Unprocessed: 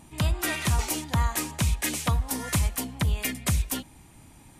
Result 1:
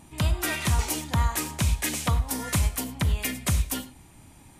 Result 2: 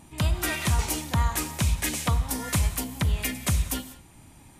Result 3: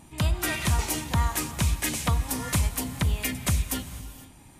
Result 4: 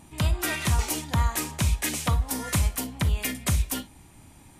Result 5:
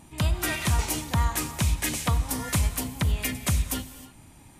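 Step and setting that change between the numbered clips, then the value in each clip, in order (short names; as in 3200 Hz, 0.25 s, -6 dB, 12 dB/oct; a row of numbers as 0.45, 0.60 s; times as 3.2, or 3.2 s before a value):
non-linear reverb, gate: 130, 220, 530, 80, 340 ms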